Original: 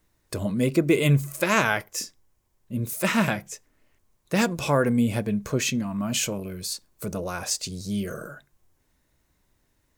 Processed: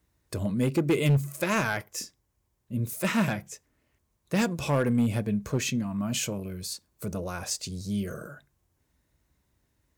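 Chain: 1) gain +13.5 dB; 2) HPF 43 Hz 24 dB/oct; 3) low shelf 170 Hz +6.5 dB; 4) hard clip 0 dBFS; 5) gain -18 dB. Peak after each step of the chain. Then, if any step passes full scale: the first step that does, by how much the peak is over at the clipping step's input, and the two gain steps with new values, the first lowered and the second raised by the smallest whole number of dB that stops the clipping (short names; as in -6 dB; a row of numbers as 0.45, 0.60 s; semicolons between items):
+6.0, +7.0, +6.5, 0.0, -18.0 dBFS; step 1, 6.5 dB; step 1 +6.5 dB, step 5 -11 dB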